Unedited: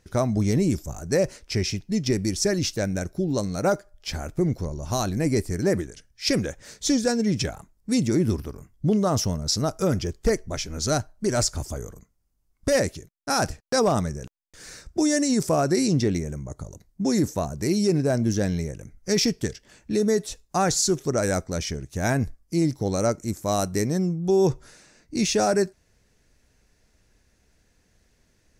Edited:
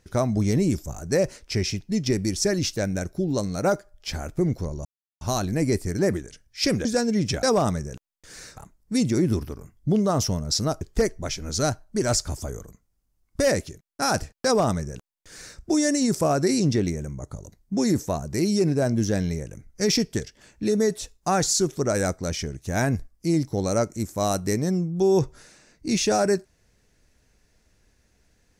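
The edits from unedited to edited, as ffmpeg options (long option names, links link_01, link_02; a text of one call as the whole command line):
ffmpeg -i in.wav -filter_complex "[0:a]asplit=6[link_01][link_02][link_03][link_04][link_05][link_06];[link_01]atrim=end=4.85,asetpts=PTS-STARTPTS,afade=type=out:start_time=4.846:duration=0.004:curve=hsin,apad=pad_dur=0.36[link_07];[link_02]atrim=start=4.85:end=6.492,asetpts=PTS-STARTPTS,afade=type=in:duration=0.004:curve=hsin[link_08];[link_03]atrim=start=6.958:end=7.542[link_09];[link_04]atrim=start=13.728:end=14.872[link_10];[link_05]atrim=start=7.538:end=9.782[link_11];[link_06]atrim=start=10.088[link_12];[link_07][link_08]concat=n=2:v=0:a=1[link_13];[link_13][link_09]acrossfade=duration=0.004:curve1=hsin:curve2=hsin[link_14];[link_14][link_10]acrossfade=duration=0.004:curve1=hsin:curve2=hsin[link_15];[link_15][link_11]acrossfade=duration=0.004:curve1=hsin:curve2=hsin[link_16];[link_16][link_12]acrossfade=duration=0.004:curve1=hsin:curve2=hsin" out.wav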